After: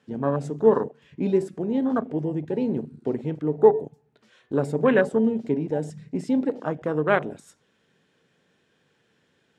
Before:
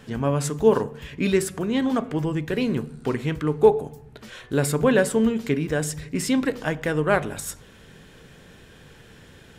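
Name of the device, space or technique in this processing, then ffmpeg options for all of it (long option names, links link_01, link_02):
over-cleaned archive recording: -af "highpass=170,lowpass=7700,afwtdn=0.0447"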